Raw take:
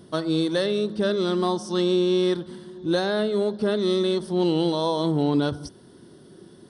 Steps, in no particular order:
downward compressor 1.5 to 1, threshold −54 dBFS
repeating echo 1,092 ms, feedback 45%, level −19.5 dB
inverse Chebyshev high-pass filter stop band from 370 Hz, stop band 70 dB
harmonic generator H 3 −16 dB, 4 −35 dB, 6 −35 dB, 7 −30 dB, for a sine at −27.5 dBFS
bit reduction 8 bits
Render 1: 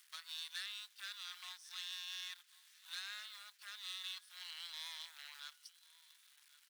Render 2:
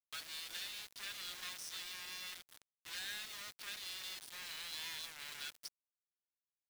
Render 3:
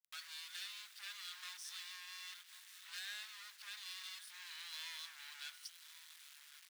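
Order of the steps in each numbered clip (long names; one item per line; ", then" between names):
bit reduction, then repeating echo, then downward compressor, then harmonic generator, then inverse Chebyshev high-pass filter
harmonic generator, then inverse Chebyshev high-pass filter, then downward compressor, then repeating echo, then bit reduction
repeating echo, then harmonic generator, then bit reduction, then downward compressor, then inverse Chebyshev high-pass filter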